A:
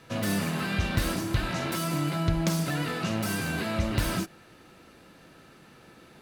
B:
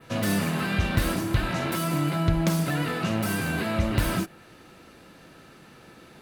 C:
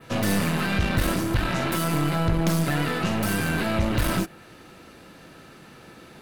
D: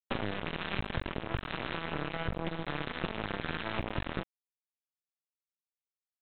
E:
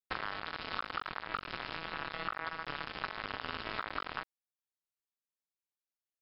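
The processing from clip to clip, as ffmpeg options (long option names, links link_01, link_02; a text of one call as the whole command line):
ffmpeg -i in.wav -af "adynamicequalizer=threshold=0.00251:dfrequency=5600:dqfactor=1:tfrequency=5600:tqfactor=1:attack=5:release=100:ratio=0.375:range=2.5:mode=cutabove:tftype=bell,volume=3dB" out.wav
ffmpeg -i in.wav -af "aeval=exprs='0.335*(cos(1*acos(clip(val(0)/0.335,-1,1)))-cos(1*PI/2))+0.0841*(cos(2*acos(clip(val(0)/0.335,-1,1)))-cos(2*PI/2))+0.0299*(cos(6*acos(clip(val(0)/0.335,-1,1)))-cos(6*PI/2))':channel_layout=same,asoftclip=type=tanh:threshold=-16.5dB,volume=3dB" out.wav
ffmpeg -i in.wav -af "acompressor=threshold=-27dB:ratio=5,aresample=8000,acrusher=bits=3:mix=0:aa=0.5,aresample=44100,volume=-2dB" out.wav
ffmpeg -i in.wav -af "aeval=exprs='val(0)*sin(2*PI*1300*n/s)':channel_layout=same,volume=-1.5dB" out.wav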